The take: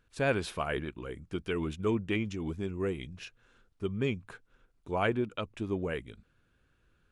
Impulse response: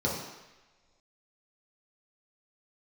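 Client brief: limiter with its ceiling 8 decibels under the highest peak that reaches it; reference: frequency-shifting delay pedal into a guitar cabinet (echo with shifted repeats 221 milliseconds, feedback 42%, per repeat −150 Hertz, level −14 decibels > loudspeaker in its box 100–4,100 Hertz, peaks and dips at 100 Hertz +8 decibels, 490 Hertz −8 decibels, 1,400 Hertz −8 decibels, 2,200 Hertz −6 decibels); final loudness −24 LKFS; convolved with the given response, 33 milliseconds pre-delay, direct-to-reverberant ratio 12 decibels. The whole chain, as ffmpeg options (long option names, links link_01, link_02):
-filter_complex "[0:a]alimiter=limit=-23.5dB:level=0:latency=1,asplit=2[link_01][link_02];[1:a]atrim=start_sample=2205,adelay=33[link_03];[link_02][link_03]afir=irnorm=-1:irlink=0,volume=-21.5dB[link_04];[link_01][link_04]amix=inputs=2:normalize=0,asplit=5[link_05][link_06][link_07][link_08][link_09];[link_06]adelay=221,afreqshift=-150,volume=-14dB[link_10];[link_07]adelay=442,afreqshift=-300,volume=-21.5dB[link_11];[link_08]adelay=663,afreqshift=-450,volume=-29.1dB[link_12];[link_09]adelay=884,afreqshift=-600,volume=-36.6dB[link_13];[link_05][link_10][link_11][link_12][link_13]amix=inputs=5:normalize=0,highpass=100,equalizer=frequency=100:width_type=q:width=4:gain=8,equalizer=frequency=490:width_type=q:width=4:gain=-8,equalizer=frequency=1400:width_type=q:width=4:gain=-8,equalizer=frequency=2200:width_type=q:width=4:gain=-6,lowpass=frequency=4100:width=0.5412,lowpass=frequency=4100:width=1.3066,volume=12.5dB"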